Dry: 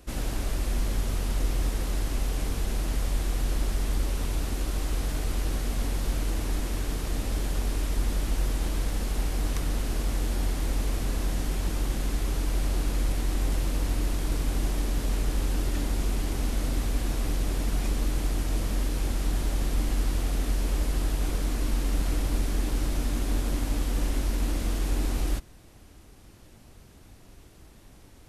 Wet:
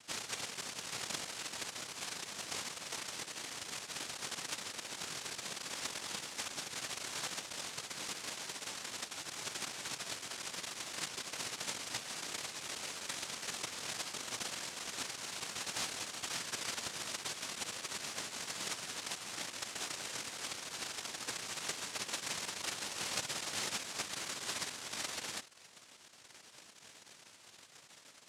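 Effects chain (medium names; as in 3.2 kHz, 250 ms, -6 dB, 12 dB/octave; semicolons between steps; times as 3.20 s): spectral gate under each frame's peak -15 dB strong; noise-vocoded speech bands 1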